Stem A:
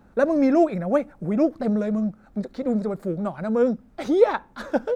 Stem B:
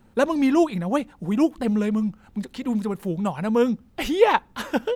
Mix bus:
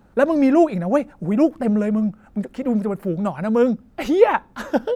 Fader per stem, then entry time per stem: 0.0, -5.0 dB; 0.00, 0.00 s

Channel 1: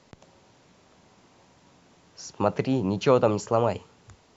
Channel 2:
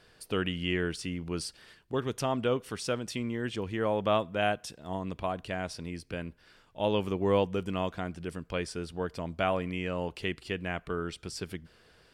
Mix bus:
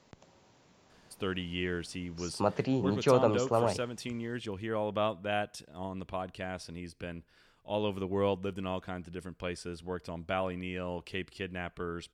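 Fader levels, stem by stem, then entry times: -5.0, -4.0 dB; 0.00, 0.90 s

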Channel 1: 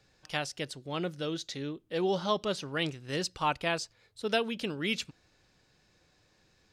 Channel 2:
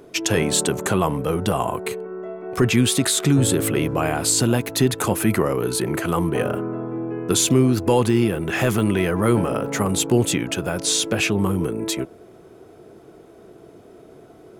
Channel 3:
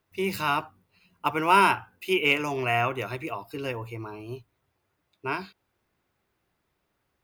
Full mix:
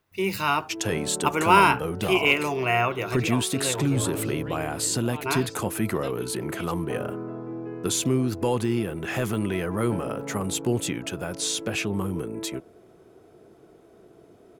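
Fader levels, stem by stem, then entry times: -12.0, -7.0, +2.0 dB; 1.70, 0.55, 0.00 s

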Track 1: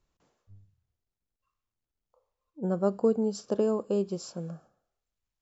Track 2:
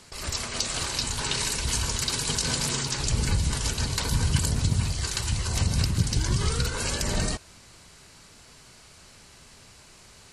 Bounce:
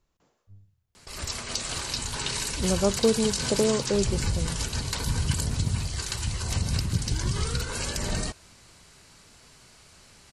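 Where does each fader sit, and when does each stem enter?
+2.5, -2.5 dB; 0.00, 0.95 s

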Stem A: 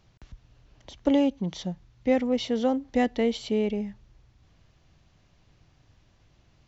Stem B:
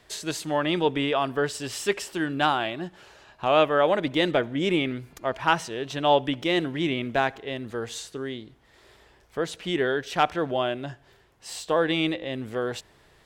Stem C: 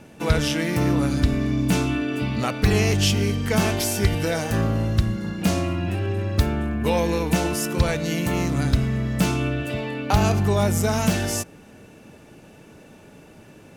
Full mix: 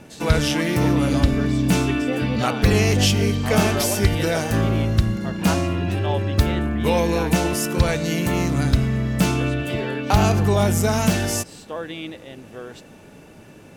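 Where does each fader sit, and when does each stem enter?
-5.5, -8.0, +2.0 dB; 0.00, 0.00, 0.00 s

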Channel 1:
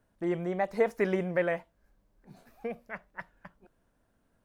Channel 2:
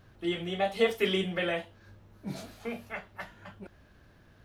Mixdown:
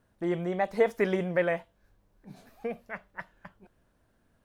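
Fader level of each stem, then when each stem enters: +1.5, -16.5 dB; 0.00, 0.00 s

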